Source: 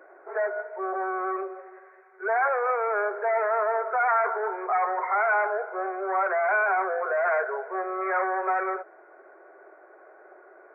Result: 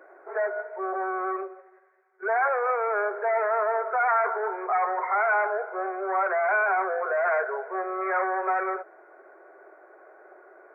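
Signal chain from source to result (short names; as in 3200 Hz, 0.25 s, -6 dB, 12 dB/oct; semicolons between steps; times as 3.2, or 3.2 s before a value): 1.33–2.23 upward expander 1.5:1, over -53 dBFS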